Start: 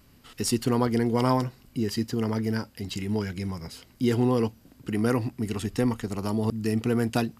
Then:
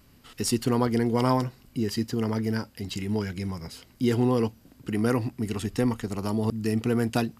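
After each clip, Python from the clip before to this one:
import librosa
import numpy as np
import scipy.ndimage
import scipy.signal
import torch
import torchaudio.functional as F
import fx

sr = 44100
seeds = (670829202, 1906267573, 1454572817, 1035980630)

y = x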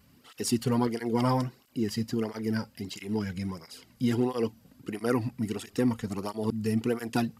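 y = fx.flanger_cancel(x, sr, hz=1.5, depth_ms=3.3)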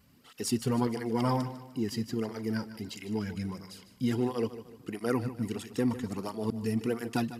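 y = fx.echo_feedback(x, sr, ms=151, feedback_pct=40, wet_db=-13.5)
y = y * 10.0 ** (-2.5 / 20.0)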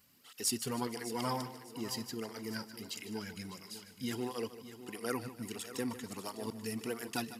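y = fx.tilt_eq(x, sr, slope=2.5)
y = fx.echo_feedback(y, sr, ms=602, feedback_pct=25, wet_db=-13.5)
y = y * 10.0 ** (-4.5 / 20.0)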